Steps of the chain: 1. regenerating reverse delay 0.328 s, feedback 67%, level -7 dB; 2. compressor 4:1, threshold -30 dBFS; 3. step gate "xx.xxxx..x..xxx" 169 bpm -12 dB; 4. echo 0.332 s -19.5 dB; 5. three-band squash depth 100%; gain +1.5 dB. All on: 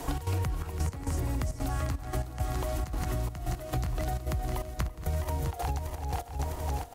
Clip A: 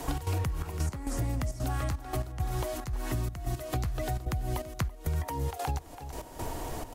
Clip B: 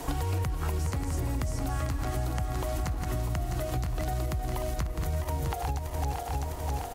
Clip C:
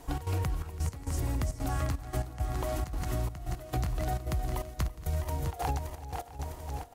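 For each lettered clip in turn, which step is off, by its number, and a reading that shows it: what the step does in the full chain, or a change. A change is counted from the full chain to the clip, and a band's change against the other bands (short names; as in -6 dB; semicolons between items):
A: 1, crest factor change -2.0 dB; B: 3, crest factor change -3.5 dB; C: 5, crest factor change -2.0 dB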